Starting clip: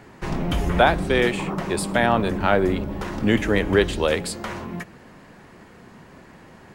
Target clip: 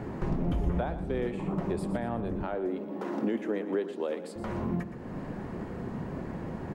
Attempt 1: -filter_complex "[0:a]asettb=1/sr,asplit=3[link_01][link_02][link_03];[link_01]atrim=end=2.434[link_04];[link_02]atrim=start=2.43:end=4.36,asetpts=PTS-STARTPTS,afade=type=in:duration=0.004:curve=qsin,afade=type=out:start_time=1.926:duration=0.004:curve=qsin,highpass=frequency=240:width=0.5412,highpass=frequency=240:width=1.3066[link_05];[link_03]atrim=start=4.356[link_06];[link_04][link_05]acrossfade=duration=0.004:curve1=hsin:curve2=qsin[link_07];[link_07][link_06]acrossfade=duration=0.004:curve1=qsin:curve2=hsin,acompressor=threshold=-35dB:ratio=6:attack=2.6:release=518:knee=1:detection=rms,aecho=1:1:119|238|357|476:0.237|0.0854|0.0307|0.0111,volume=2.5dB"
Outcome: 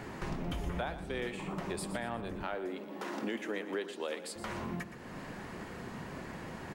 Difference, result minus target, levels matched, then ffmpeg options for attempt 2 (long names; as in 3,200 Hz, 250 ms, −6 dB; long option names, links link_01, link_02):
1,000 Hz band +3.5 dB
-filter_complex "[0:a]asettb=1/sr,asplit=3[link_01][link_02][link_03];[link_01]atrim=end=2.434[link_04];[link_02]atrim=start=2.43:end=4.36,asetpts=PTS-STARTPTS,afade=type=in:duration=0.004:curve=qsin,afade=type=out:start_time=1.926:duration=0.004:curve=qsin,highpass=frequency=240:width=0.5412,highpass=frequency=240:width=1.3066[link_05];[link_03]atrim=start=4.356[link_06];[link_04][link_05]acrossfade=duration=0.004:curve1=hsin:curve2=qsin[link_07];[link_07][link_06]acrossfade=duration=0.004:curve1=qsin:curve2=hsin,acompressor=threshold=-35dB:ratio=6:attack=2.6:release=518:knee=1:detection=rms,tiltshelf=frequency=1200:gain=9,aecho=1:1:119|238|357|476:0.237|0.0854|0.0307|0.0111,volume=2.5dB"